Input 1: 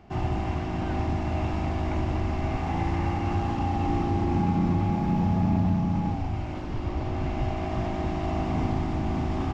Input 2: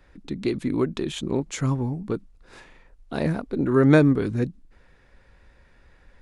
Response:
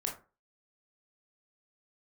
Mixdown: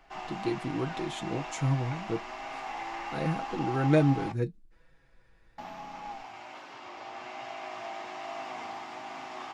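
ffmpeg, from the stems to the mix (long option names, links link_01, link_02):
-filter_complex "[0:a]highpass=870,volume=3dB,asplit=3[link_01][link_02][link_03];[link_01]atrim=end=4.32,asetpts=PTS-STARTPTS,afade=type=out:start_time=4.316:duration=0.004:curve=hsin[link_04];[link_02]atrim=start=4.32:end=5.58,asetpts=PTS-STARTPTS,volume=0[link_05];[link_03]atrim=start=5.58,asetpts=PTS-STARTPTS,afade=type=in:duration=0.004:curve=hsin[link_06];[link_04][link_05][link_06]concat=n=3:v=0:a=1[link_07];[1:a]aecho=1:1:6.1:0.61,volume=-4.5dB[link_08];[link_07][link_08]amix=inputs=2:normalize=0,flanger=delay=7.3:depth=1.6:regen=60:speed=1.2:shape=sinusoidal"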